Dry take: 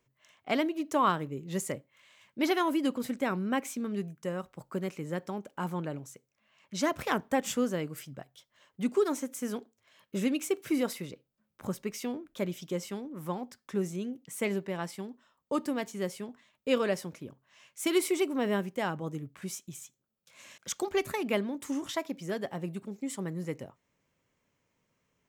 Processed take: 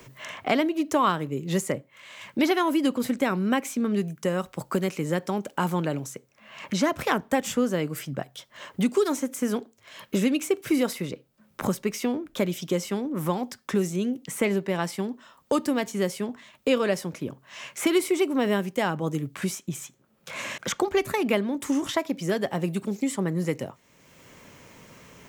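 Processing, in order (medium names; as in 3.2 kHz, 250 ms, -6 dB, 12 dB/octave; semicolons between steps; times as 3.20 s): three bands compressed up and down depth 70%; trim +6.5 dB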